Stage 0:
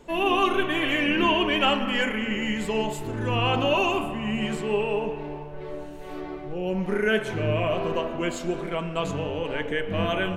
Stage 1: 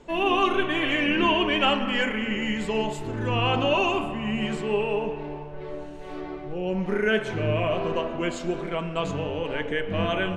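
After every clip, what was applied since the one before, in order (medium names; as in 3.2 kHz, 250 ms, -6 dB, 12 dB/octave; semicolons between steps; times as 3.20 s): low-pass 7.3 kHz 12 dB/octave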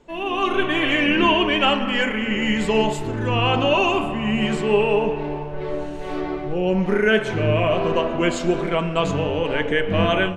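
level rider gain up to 13 dB; trim -4 dB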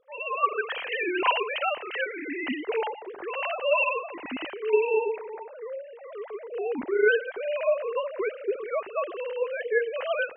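formants replaced by sine waves; trim -8 dB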